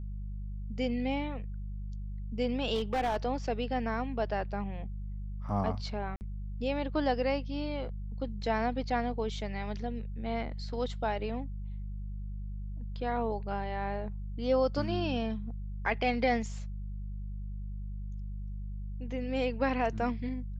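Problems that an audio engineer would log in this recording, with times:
hum 50 Hz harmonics 4 -38 dBFS
2.74–3.17 s: clipped -26 dBFS
6.16–6.21 s: dropout 49 ms

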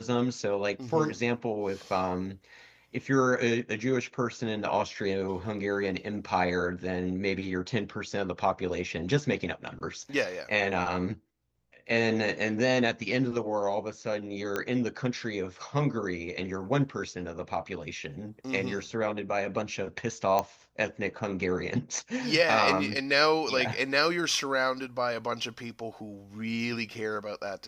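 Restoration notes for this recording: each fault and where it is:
14.56 s: pop -16 dBFS
20.39 s: pop -13 dBFS

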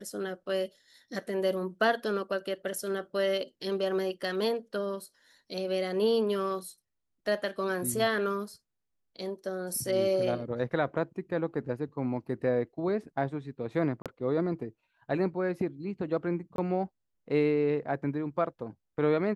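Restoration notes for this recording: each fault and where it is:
14.02–14.06 s: dropout 37 ms
16.56–16.58 s: dropout 22 ms

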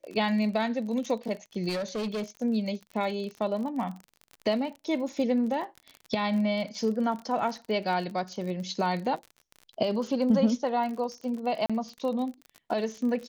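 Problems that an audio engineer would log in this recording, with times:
crackle 41 per s -35 dBFS
1.68–2.23 s: clipped -28 dBFS
11.66–11.70 s: dropout 36 ms

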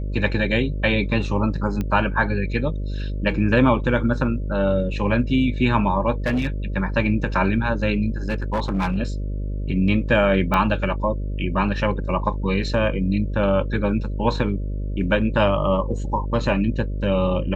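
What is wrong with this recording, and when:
buzz 50 Hz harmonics 12 -26 dBFS
1.81 s: pop -14 dBFS
6.26–6.47 s: clipped -17 dBFS
8.28–8.98 s: clipped -17.5 dBFS
10.54 s: pop -9 dBFS

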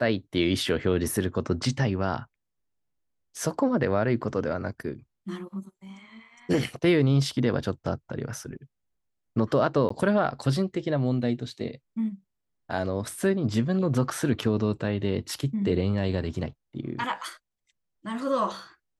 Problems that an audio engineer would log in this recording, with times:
9.89–9.90 s: dropout 14 ms

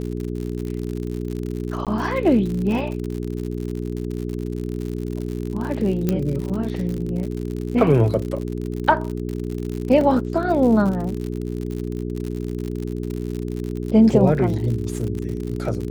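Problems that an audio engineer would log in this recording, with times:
crackle 72 per s -27 dBFS
hum 60 Hz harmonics 7 -27 dBFS
1.85–1.87 s: dropout 17 ms
6.09 s: pop -8 dBFS
10.01 s: dropout 2.6 ms

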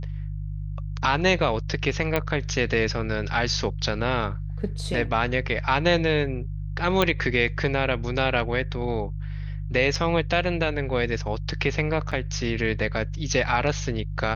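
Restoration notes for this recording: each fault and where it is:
hum 50 Hz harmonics 3 -31 dBFS
2.16 s: pop -10 dBFS
7.02 s: pop -8 dBFS
9.95 s: dropout 3.9 ms
12.11–12.12 s: dropout 6 ms

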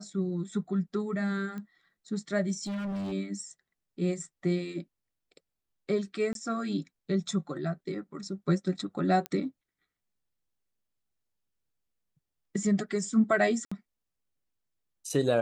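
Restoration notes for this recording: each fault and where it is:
1.58 s: pop -28 dBFS
2.63–3.13 s: clipped -31.5 dBFS
6.33–6.35 s: dropout 22 ms
9.26 s: pop -18 dBFS
13.65–13.71 s: dropout 65 ms

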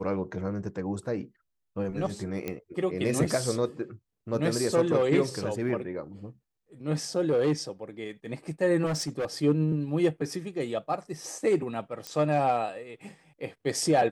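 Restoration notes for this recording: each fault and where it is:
2.48 s: pop -18 dBFS
8.85–9.26 s: clipped -25.5 dBFS
12.07 s: pop -19 dBFS

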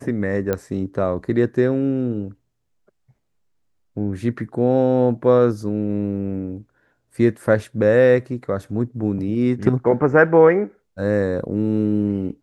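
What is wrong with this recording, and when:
0.53 s: pop -10 dBFS

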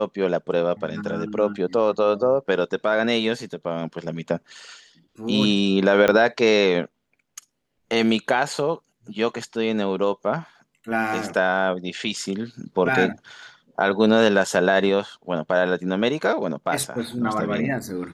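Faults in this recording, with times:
6.08 s: pop -7 dBFS

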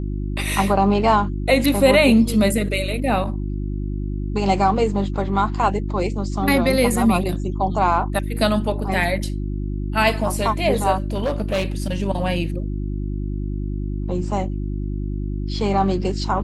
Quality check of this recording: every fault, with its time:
hum 50 Hz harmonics 7 -25 dBFS
10.98–11.94 s: clipped -17 dBFS

